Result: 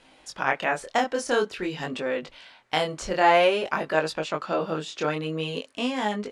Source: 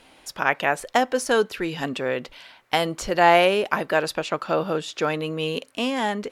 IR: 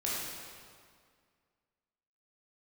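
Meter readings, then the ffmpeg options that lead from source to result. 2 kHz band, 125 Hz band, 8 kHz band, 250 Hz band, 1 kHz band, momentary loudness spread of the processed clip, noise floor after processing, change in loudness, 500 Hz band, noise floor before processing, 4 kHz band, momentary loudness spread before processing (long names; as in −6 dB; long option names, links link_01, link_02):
−3.0 dB, −2.5 dB, −4.0 dB, −2.5 dB, −2.5 dB, 11 LU, −56 dBFS, −3.0 dB, −2.5 dB, −54 dBFS, −3.0 dB, 10 LU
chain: -af "lowpass=frequency=9400:width=0.5412,lowpass=frequency=9400:width=1.3066,flanger=delay=19:depth=7.6:speed=0.49"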